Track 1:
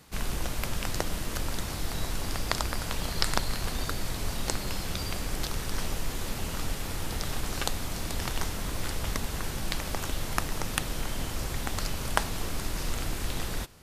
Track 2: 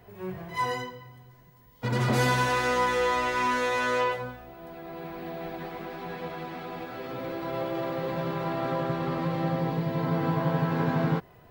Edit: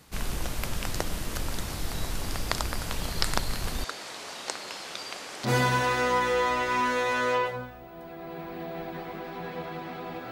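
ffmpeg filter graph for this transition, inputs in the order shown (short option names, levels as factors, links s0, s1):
-filter_complex "[0:a]asettb=1/sr,asplit=3[s0][s1][s2];[s0]atrim=end=3.844[s3];[s1]atrim=start=3.84:end=5.49,asetpts=PTS-STARTPTS,afade=t=in:d=0.004:c=qsin,afade=t=out:st=1.646:d=0.004:c=qsin,highpass=480,lowpass=7200[s4];[s2]atrim=start=5.486[s5];[s3][s4]acrossfade=d=0.004:c1=hsin:c2=qsin[s6];[s6][s5]acrossfade=d=0.004:c1=qsin:c2=hsin,apad=whole_dur=10.31,atrim=end=10.31,atrim=end=5.49,asetpts=PTS-STARTPTS[s7];[1:a]atrim=start=2.09:end=6.97,asetpts=PTS-STARTPTS[s8];[s7][s8]acrossfade=d=0.06:c1=tri:c2=tri"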